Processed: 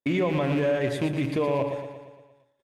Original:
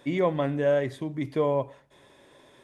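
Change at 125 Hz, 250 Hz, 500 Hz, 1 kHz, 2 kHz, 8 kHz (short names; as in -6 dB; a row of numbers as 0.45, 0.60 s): +3.5 dB, +3.5 dB, -0.5 dB, 0.0 dB, +4.0 dB, n/a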